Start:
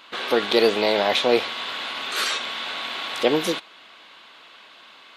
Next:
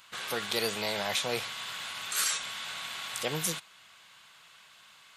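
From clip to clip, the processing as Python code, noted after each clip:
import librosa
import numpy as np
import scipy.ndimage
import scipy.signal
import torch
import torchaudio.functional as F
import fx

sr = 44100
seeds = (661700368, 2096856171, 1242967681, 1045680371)

y = fx.curve_eq(x, sr, hz=(160.0, 270.0, 630.0, 1500.0, 3900.0, 7400.0), db=(0, -19, -14, -8, -9, 6))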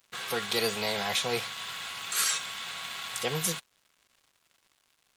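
y = fx.notch_comb(x, sr, f0_hz=300.0)
y = np.sign(y) * np.maximum(np.abs(y) - 10.0 ** (-53.0 / 20.0), 0.0)
y = y * 10.0 ** (3.5 / 20.0)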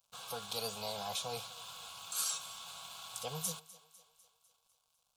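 y = fx.fixed_phaser(x, sr, hz=790.0, stages=4)
y = fx.echo_thinned(y, sr, ms=250, feedback_pct=58, hz=300.0, wet_db=-19)
y = y * 10.0 ** (-6.5 / 20.0)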